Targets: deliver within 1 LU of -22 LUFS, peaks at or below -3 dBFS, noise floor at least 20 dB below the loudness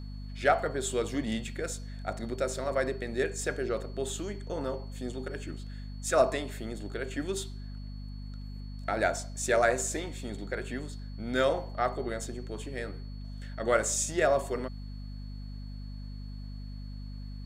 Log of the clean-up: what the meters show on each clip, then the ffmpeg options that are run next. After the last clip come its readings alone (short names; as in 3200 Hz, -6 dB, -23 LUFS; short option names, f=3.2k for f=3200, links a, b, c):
hum 50 Hz; harmonics up to 250 Hz; hum level -38 dBFS; steady tone 4400 Hz; tone level -57 dBFS; loudness -32.0 LUFS; peak -11.5 dBFS; loudness target -22.0 LUFS
-> -af "bandreject=f=50:t=h:w=4,bandreject=f=100:t=h:w=4,bandreject=f=150:t=h:w=4,bandreject=f=200:t=h:w=4,bandreject=f=250:t=h:w=4"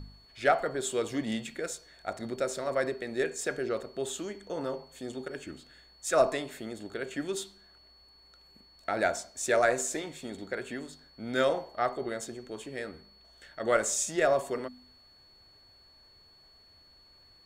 hum none; steady tone 4400 Hz; tone level -57 dBFS
-> -af "bandreject=f=4.4k:w=30"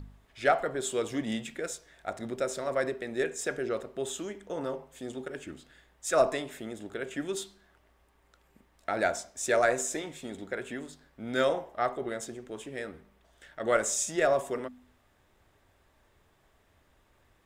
steady tone none; loudness -32.0 LUFS; peak -12.0 dBFS; loudness target -22.0 LUFS
-> -af "volume=10dB,alimiter=limit=-3dB:level=0:latency=1"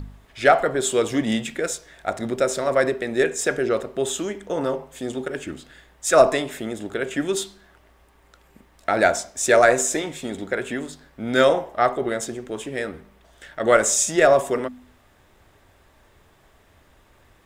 loudness -22.0 LUFS; peak -3.0 dBFS; noise floor -57 dBFS